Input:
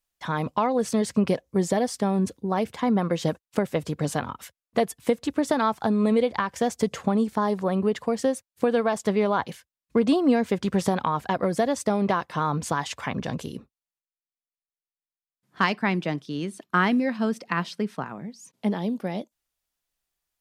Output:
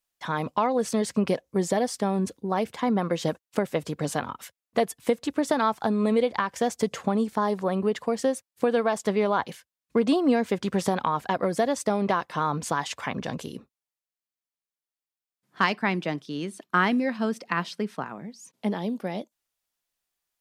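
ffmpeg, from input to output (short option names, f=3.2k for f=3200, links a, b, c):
-af "lowshelf=f=120:g=-10"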